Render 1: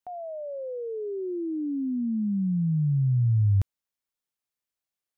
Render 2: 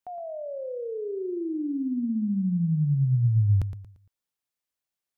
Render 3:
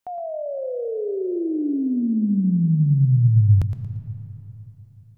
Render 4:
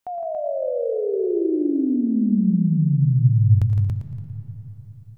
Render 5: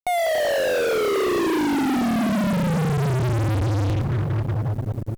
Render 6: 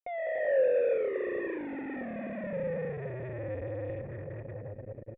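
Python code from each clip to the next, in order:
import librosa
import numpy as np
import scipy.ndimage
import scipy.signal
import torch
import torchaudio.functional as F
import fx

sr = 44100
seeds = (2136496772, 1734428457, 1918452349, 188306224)

y1 = fx.echo_feedback(x, sr, ms=115, feedback_pct=34, wet_db=-11.0)
y2 = fx.rev_freeverb(y1, sr, rt60_s=3.7, hf_ratio=0.55, predelay_ms=60, drr_db=13.0)
y2 = F.gain(torch.from_numpy(y2), 6.0).numpy()
y3 = fx.rider(y2, sr, range_db=3, speed_s=2.0)
y3 = fx.echo_multitap(y3, sr, ms=(84, 162, 176, 282, 568), db=(-18.5, -8.0, -16.5, -3.5, -20.0))
y3 = F.gain(torch.from_numpy(y3), -1.5).numpy()
y4 = fx.fuzz(y3, sr, gain_db=43.0, gate_db=-43.0)
y4 = F.gain(torch.from_numpy(y4), -7.0).numpy()
y5 = fx.wow_flutter(y4, sr, seeds[0], rate_hz=2.1, depth_cents=57.0)
y5 = fx.formant_cascade(y5, sr, vowel='e')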